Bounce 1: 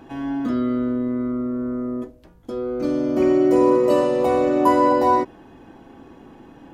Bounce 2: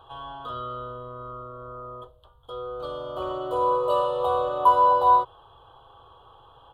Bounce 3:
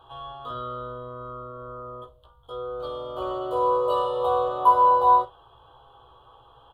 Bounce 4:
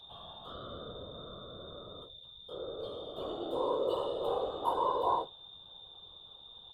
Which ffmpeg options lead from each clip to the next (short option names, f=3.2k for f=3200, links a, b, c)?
-af "firequalizer=gain_entry='entry(120,0);entry(190,-26);entry(280,-26);entry(450,-1);entry(660,-1);entry(1200,11);entry(2100,-28);entry(3200,13);entry(5500,-20);entry(8600,-5)':delay=0.05:min_phase=1,volume=-4.5dB"
-af "aecho=1:1:16|52:0.631|0.2,volume=-2.5dB"
-af "aeval=exprs='val(0)+0.00794*sin(2*PI*3600*n/s)':c=same,equalizer=f=1.2k:t=o:w=1.1:g=-9.5,afftfilt=real='hypot(re,im)*cos(2*PI*random(0))':imag='hypot(re,im)*sin(2*PI*random(1))':win_size=512:overlap=0.75,volume=-1dB"